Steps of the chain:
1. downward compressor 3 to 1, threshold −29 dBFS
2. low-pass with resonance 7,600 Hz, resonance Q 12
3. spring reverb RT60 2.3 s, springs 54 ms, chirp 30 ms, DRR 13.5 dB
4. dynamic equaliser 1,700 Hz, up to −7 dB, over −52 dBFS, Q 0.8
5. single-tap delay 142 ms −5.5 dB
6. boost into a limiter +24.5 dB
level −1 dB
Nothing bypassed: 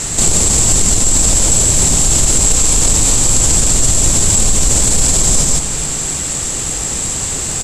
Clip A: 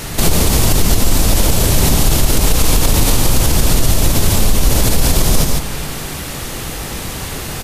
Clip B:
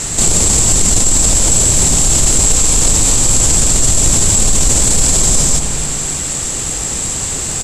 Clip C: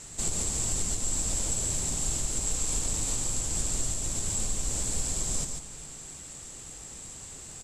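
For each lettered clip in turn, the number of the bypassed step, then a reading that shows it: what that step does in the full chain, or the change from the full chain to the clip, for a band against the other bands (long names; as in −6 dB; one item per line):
2, 8 kHz band −13.0 dB
1, average gain reduction 4.0 dB
6, change in crest factor +4.0 dB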